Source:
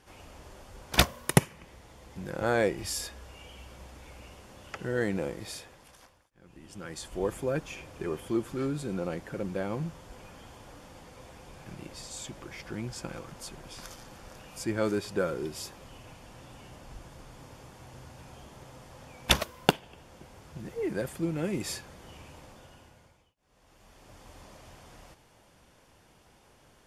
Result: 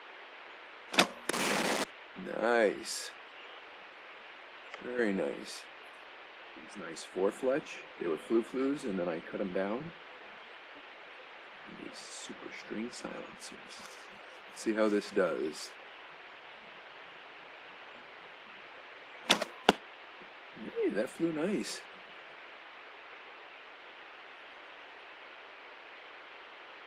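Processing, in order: 1.33–1.84 infinite clipping; LPF 7700 Hz 12 dB/oct; spectral noise reduction 23 dB; steep high-pass 190 Hz 48 dB/oct; 2.45–2.91 low shelf 380 Hz -3.5 dB; 4.51–4.99 compressor 1.5:1, threshold -48 dBFS, peak gain reduction 8 dB; band noise 340–2900 Hz -49 dBFS; Opus 24 kbps 48000 Hz

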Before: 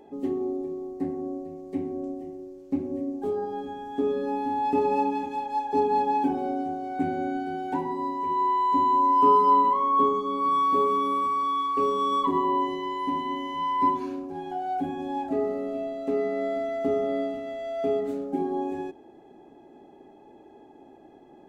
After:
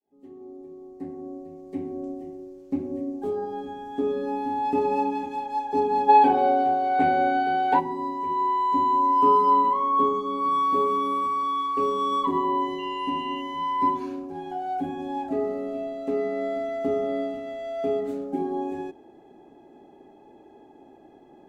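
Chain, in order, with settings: opening faded in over 2.15 s; 6.09–7.8 spectral gain 400–4900 Hz +11 dB; 12.78–13.4 whine 2800 Hz -40 dBFS

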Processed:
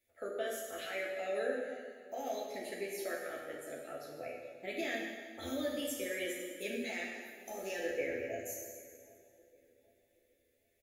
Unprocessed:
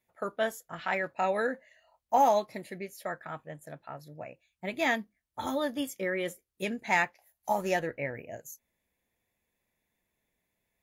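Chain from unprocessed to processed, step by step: compressor 3:1, threshold -32 dBFS, peak gain reduction 10 dB; limiter -28 dBFS, peak gain reduction 7.5 dB; fixed phaser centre 400 Hz, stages 4; doubler 12 ms -4.5 dB; darkening echo 0.772 s, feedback 37%, low-pass 1300 Hz, level -19.5 dB; plate-style reverb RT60 1.7 s, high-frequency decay 0.9×, DRR -1.5 dB; gain -1 dB

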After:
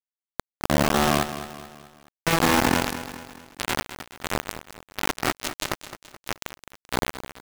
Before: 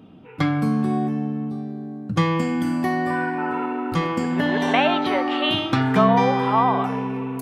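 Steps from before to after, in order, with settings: Wiener smoothing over 15 samples; negative-ratio compressor -23 dBFS, ratio -0.5; 3.81–4.24 Chebyshev high-pass 2300 Hz; limiter -21 dBFS, peak gain reduction 10.5 dB; echo 0.209 s -22.5 dB; step gate "xx.xxx.xx..xx" 73 bpm; rotary speaker horn 0.7 Hz, later 6 Hz, at 4.4; bit-crush 4-bit; lo-fi delay 0.214 s, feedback 55%, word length 7-bit, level -12 dB; gain +6.5 dB

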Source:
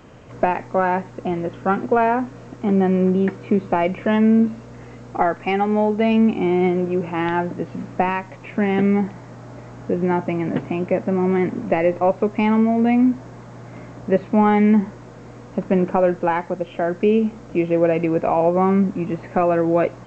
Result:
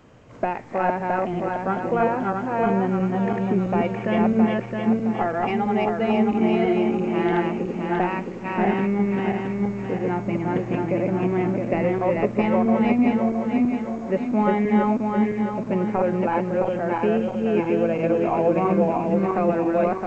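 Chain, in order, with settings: regenerating reverse delay 0.333 s, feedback 66%, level -0.5 dB; gain -6 dB

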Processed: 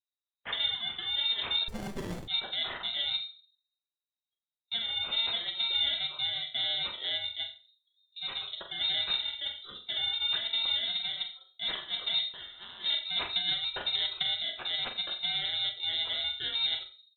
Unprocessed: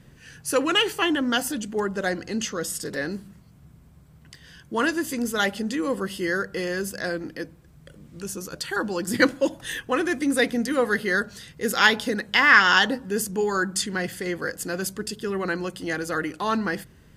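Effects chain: FFT order left unsorted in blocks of 32 samples; spectral noise reduction 28 dB; gate with hold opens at -37 dBFS; negative-ratio compressor -26 dBFS, ratio -1; 13.12–14.23 transient shaper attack +12 dB, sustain -3 dB; soft clip -17 dBFS, distortion -18 dB; flutter echo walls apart 7.5 m, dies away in 0.31 s; on a send at -7 dB: reverb RT60 0.35 s, pre-delay 4 ms; on the sum: inverted band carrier 3900 Hz; 1.68–2.28 running maximum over 33 samples; gain -4.5 dB

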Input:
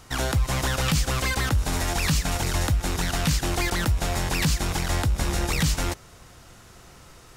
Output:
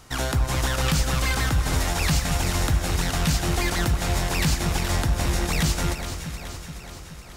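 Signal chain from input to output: de-hum 97.65 Hz, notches 32; on a send: echo with dull and thin repeats by turns 0.212 s, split 1700 Hz, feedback 78%, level -7 dB

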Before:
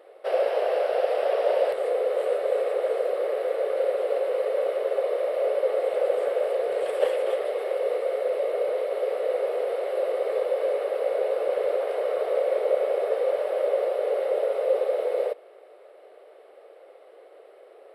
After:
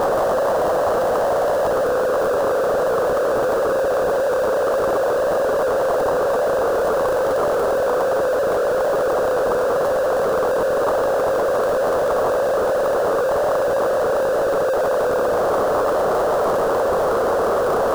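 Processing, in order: infinite clipping; resonant high shelf 1600 Hz -11 dB, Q 3; gain +6.5 dB

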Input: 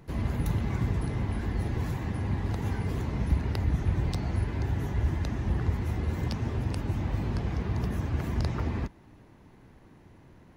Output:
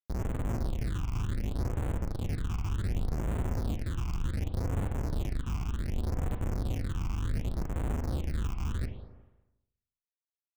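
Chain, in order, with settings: Schmitt trigger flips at -26 dBFS; spring tank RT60 1 s, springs 36/40 ms, chirp 20 ms, DRR 6 dB; phaser stages 8, 0.67 Hz, lowest notch 520–4900 Hz; gain -2.5 dB

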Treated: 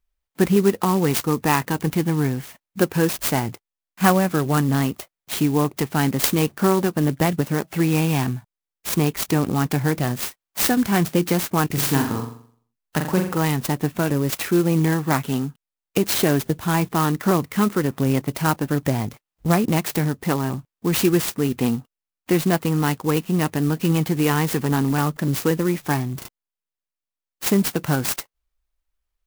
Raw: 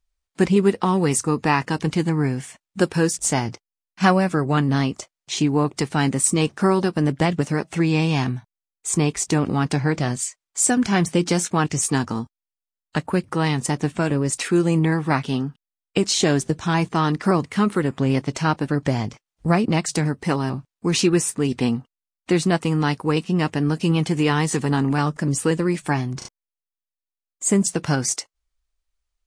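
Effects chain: 11.66–13.38 flutter echo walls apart 7.3 m, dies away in 0.54 s; clock jitter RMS 0.049 ms

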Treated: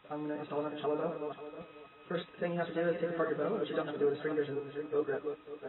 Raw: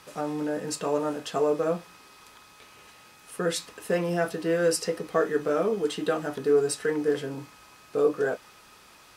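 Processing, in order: regenerating reverse delay 0.436 s, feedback 42%, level -6.5 dB; time stretch by phase-locked vocoder 0.62×; gain -8 dB; AAC 16 kbps 22050 Hz

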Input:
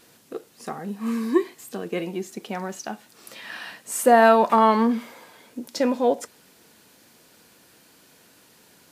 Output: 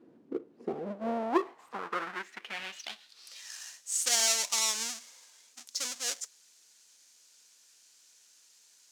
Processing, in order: half-waves squared off; band-pass sweep 300 Hz -> 6500 Hz, 0.48–3.56

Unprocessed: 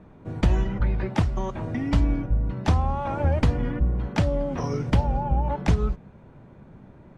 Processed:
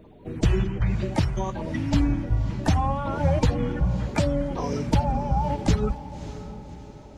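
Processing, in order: bin magnitudes rounded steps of 30 dB; high shelf 3700 Hz +6.5 dB; on a send: diffused feedback echo 0.593 s, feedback 45%, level -13.5 dB

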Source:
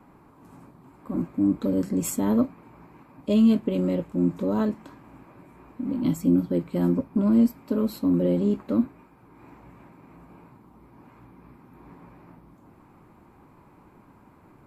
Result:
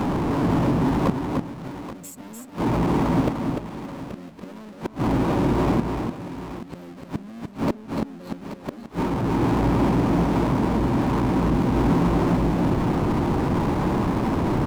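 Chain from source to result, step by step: Wiener smoothing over 25 samples; in parallel at -2 dB: limiter -21.5 dBFS, peak gain reduction 10.5 dB; on the sum: power-law curve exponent 0.5; flipped gate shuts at -18 dBFS, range -33 dB; on a send: tapped delay 0.297/0.83 s -5/-14 dB; on the sum: mismatched tape noise reduction encoder only; gain +7 dB

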